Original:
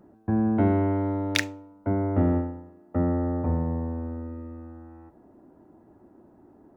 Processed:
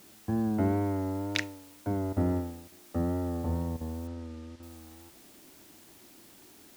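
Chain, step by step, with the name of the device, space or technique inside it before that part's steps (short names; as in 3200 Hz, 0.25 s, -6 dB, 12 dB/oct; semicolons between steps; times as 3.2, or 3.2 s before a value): worn cassette (LPF 7200 Hz; wow and flutter; level dips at 2.13/2.68/3.77/4.56, 37 ms -12 dB; white noise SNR 23 dB); 4.07–4.63 LPF 5000 Hz 12 dB/oct; gain -5.5 dB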